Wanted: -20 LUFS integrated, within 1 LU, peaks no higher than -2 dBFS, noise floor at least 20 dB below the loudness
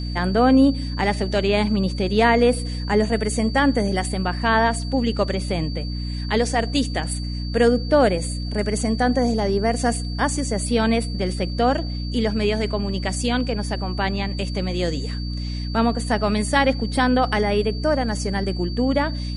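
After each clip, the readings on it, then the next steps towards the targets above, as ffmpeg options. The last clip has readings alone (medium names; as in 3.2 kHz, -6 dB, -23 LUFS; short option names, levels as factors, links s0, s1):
hum 60 Hz; highest harmonic 300 Hz; hum level -25 dBFS; steady tone 4.6 kHz; tone level -36 dBFS; loudness -21.5 LUFS; peak level -4.5 dBFS; loudness target -20.0 LUFS
-> -af "bandreject=f=60:t=h:w=6,bandreject=f=120:t=h:w=6,bandreject=f=180:t=h:w=6,bandreject=f=240:t=h:w=6,bandreject=f=300:t=h:w=6"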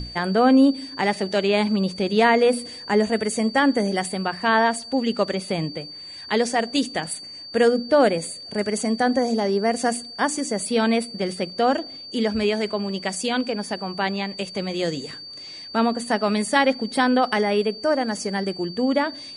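hum not found; steady tone 4.6 kHz; tone level -36 dBFS
-> -af "bandreject=f=4600:w=30"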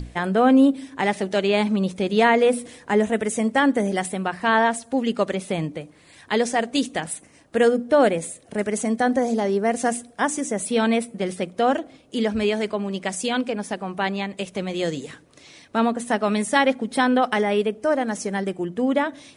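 steady tone not found; loudness -22.5 LUFS; peak level -5.5 dBFS; loudness target -20.0 LUFS
-> -af "volume=1.33"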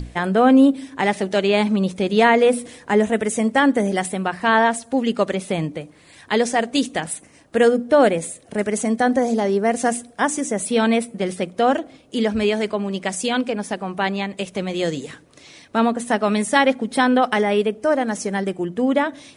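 loudness -20.0 LUFS; peak level -3.0 dBFS; noise floor -50 dBFS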